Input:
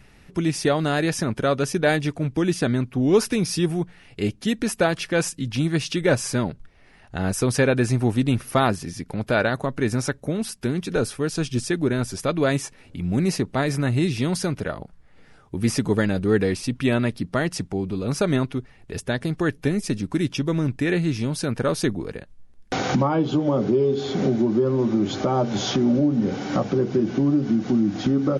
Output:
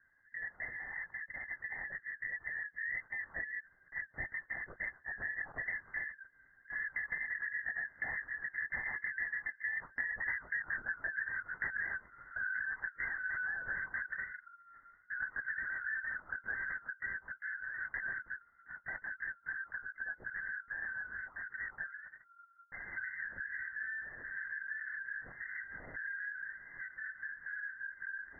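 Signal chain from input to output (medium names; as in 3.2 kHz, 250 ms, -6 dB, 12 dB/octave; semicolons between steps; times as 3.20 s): four frequency bands reordered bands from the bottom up 3142; Doppler pass-by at 10.58 s, 21 m/s, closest 7.4 m; LPC vocoder at 8 kHz whisper; brick-wall FIR low-pass 2.1 kHz; compression 12:1, threshold -45 dBFS, peak gain reduction 25.5 dB; trim +10.5 dB; MP3 16 kbps 16 kHz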